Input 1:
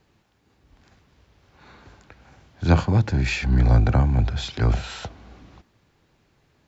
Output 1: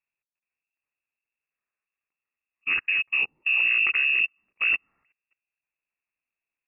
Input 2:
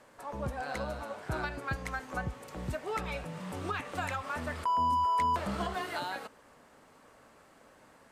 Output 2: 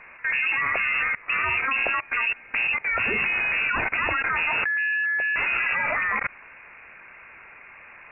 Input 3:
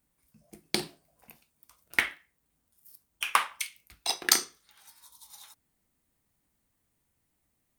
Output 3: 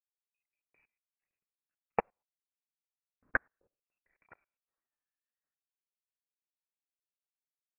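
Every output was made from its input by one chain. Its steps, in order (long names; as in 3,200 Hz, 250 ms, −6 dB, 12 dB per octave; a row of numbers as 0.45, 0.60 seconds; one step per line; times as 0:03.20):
output level in coarse steps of 22 dB
voice inversion scrambler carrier 2,700 Hz
expander for the loud parts 2.5 to 1, over −38 dBFS
normalise the peak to −12 dBFS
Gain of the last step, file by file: +1.5, +19.5, −3.5 decibels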